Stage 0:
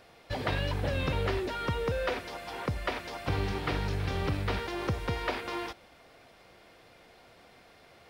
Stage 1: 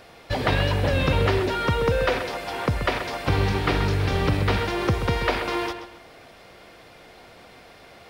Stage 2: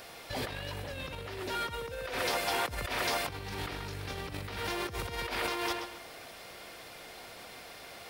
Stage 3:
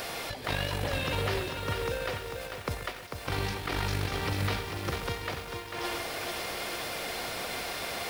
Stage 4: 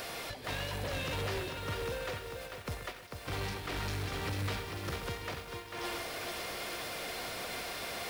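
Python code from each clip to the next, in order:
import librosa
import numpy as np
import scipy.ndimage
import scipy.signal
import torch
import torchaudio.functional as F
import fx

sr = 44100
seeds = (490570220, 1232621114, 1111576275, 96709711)

y1 = fx.echo_filtered(x, sr, ms=131, feedback_pct=34, hz=4600.0, wet_db=-9.0)
y1 = F.gain(torch.from_numpy(y1), 8.5).numpy()
y2 = fx.high_shelf(y1, sr, hz=6200.0, db=11.5)
y2 = fx.over_compress(y2, sr, threshold_db=-29.0, ratio=-1.0)
y2 = fx.low_shelf(y2, sr, hz=410.0, db=-5.5)
y2 = F.gain(torch.from_numpy(y2), -5.5).numpy()
y3 = fx.over_compress(y2, sr, threshold_db=-41.0, ratio=-0.5)
y3 = fx.echo_crushed(y3, sr, ms=445, feedback_pct=55, bits=9, wet_db=-5.5)
y3 = F.gain(torch.from_numpy(y3), 7.0).numpy()
y4 = fx.notch(y3, sr, hz=840.0, q=16.0)
y4 = 10.0 ** (-30.5 / 20.0) * np.tanh(y4 / 10.0 ** (-30.5 / 20.0))
y4 = fx.upward_expand(y4, sr, threshold_db=-45.0, expansion=1.5)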